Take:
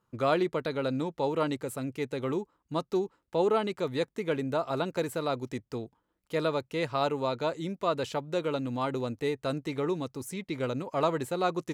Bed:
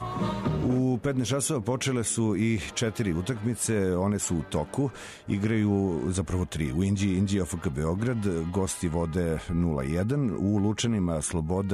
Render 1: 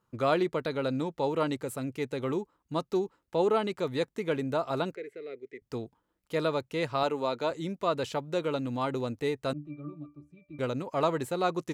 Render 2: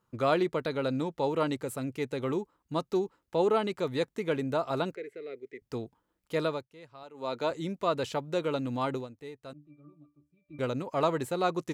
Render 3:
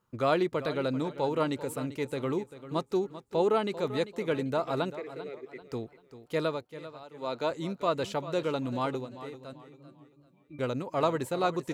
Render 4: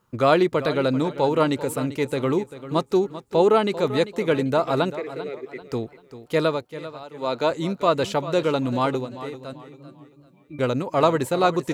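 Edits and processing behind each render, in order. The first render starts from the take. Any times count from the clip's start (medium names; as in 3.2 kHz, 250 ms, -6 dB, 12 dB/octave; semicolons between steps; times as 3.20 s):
4.95–5.62 s: two resonant band-passes 930 Hz, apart 2.3 oct; 7.03–7.51 s: high-pass 190 Hz; 9.53–10.59 s: pitch-class resonator D, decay 0.24 s
6.35–7.47 s: dip -20 dB, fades 0.33 s equal-power; 8.93–10.58 s: dip -13.5 dB, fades 0.15 s
modulated delay 392 ms, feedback 33%, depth 57 cents, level -14 dB
trim +8.5 dB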